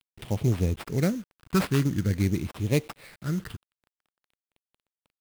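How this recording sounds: a quantiser's noise floor 8-bit, dither none; phasing stages 12, 0.47 Hz, lowest notch 630–1500 Hz; aliases and images of a low sample rate 6400 Hz, jitter 20%

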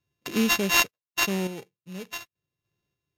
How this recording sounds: a buzz of ramps at a fixed pitch in blocks of 16 samples; random-step tremolo 3.4 Hz, depth 90%; aliases and images of a low sample rate 9300 Hz, jitter 0%; Vorbis

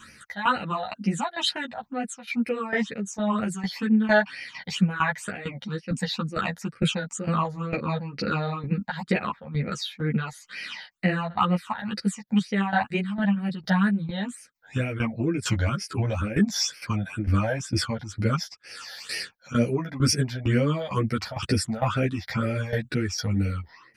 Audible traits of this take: phasing stages 8, 2.1 Hz, lowest notch 330–1100 Hz; tremolo saw down 2.2 Hz, depth 80%; a shimmering, thickened sound

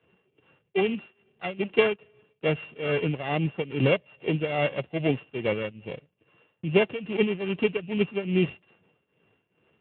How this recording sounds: a buzz of ramps at a fixed pitch in blocks of 16 samples; tremolo triangle 2.4 Hz, depth 85%; Speex

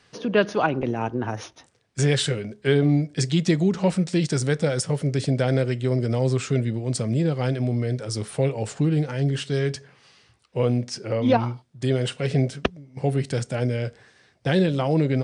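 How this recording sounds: noise floor -61 dBFS; spectral tilt -6.5 dB/oct

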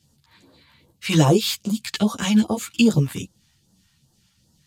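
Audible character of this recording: phasing stages 2, 2.5 Hz, lowest notch 370–2200 Hz; tremolo triangle 2.7 Hz, depth 30%; a shimmering, thickened sound

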